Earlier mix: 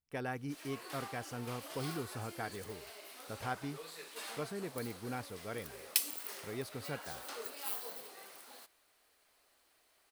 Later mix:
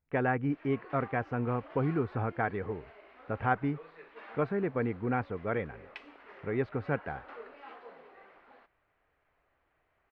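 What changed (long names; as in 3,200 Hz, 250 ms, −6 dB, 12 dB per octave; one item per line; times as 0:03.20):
speech +10.5 dB
master: add low-pass filter 2,200 Hz 24 dB per octave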